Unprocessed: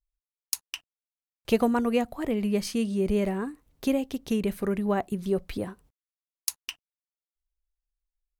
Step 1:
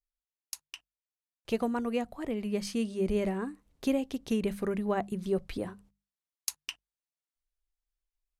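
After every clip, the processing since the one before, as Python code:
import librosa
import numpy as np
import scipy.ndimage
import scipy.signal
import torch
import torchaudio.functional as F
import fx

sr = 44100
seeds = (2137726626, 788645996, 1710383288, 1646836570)

y = scipy.signal.sosfilt(scipy.signal.butter(2, 11000.0, 'lowpass', fs=sr, output='sos'), x)
y = fx.hum_notches(y, sr, base_hz=50, count=4)
y = fx.rider(y, sr, range_db=10, speed_s=2.0)
y = y * 10.0 ** (-3.5 / 20.0)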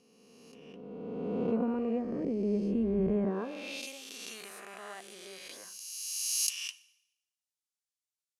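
y = fx.spec_swells(x, sr, rise_s=2.31)
y = fx.rev_schroeder(y, sr, rt60_s=0.84, comb_ms=28, drr_db=17.5)
y = fx.filter_sweep_bandpass(y, sr, from_hz=210.0, to_hz=6900.0, start_s=3.23, end_s=3.87, q=0.87)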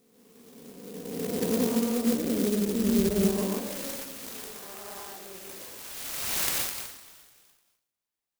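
y = fx.echo_feedback(x, sr, ms=299, feedback_pct=38, wet_db=-17)
y = fx.rev_plate(y, sr, seeds[0], rt60_s=0.64, hf_ratio=0.75, predelay_ms=105, drr_db=-2.0)
y = fx.clock_jitter(y, sr, seeds[1], jitter_ms=0.14)
y = y * 10.0 ** (1.0 / 20.0)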